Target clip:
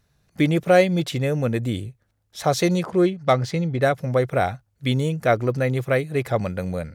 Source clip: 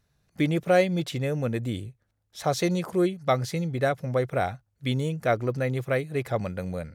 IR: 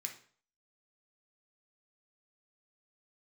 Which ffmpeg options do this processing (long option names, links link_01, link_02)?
-filter_complex "[0:a]asettb=1/sr,asplit=3[link_01][link_02][link_03];[link_01]atrim=end=2.834[link_04];[link_02]atrim=start=2.83:end=3.82,asetpts=PTS-STARTPTS,afade=type=in:duration=0.004:curve=qsin,afade=type=out:start_time=0.986:duration=0.004:curve=qsin,adynamicsmooth=sensitivity=6.5:basefreq=4600[link_05];[link_03]atrim=start=3.816[link_06];[link_04][link_05]acrossfade=duration=0.004:curve1=hsin:curve2=qsin[link_07];[link_07][link_06]acrossfade=duration=0.004:curve1=qsin:curve2=hsin,volume=5dB"